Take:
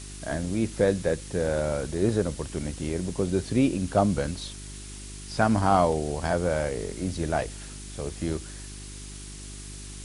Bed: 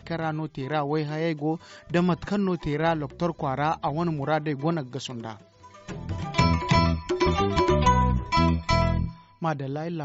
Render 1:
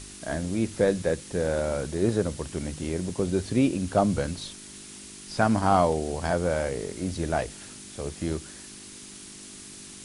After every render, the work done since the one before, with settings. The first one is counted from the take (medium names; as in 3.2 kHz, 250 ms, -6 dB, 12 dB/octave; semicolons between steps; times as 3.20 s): de-hum 50 Hz, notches 3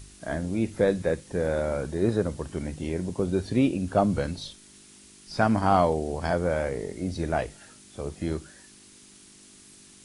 noise print and reduce 8 dB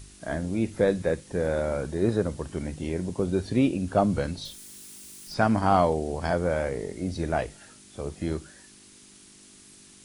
4.45–5.34 s: zero-crossing glitches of -42.5 dBFS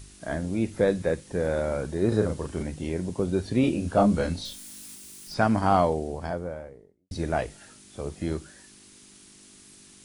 2.08–2.63 s: doubling 37 ms -4 dB; 3.61–4.95 s: doubling 24 ms -2.5 dB; 5.66–7.11 s: studio fade out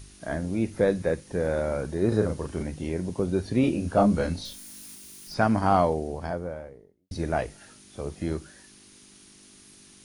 band-stop 7.7 kHz, Q 6.5; dynamic bell 3.4 kHz, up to -3 dB, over -54 dBFS, Q 2.4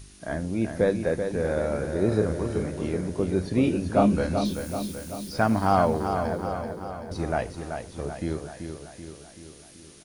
feedback delay 383 ms, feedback 57%, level -7 dB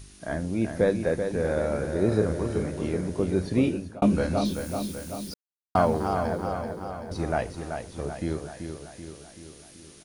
3.60–4.02 s: fade out; 5.34–5.75 s: mute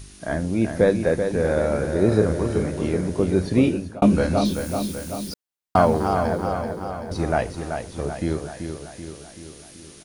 trim +5 dB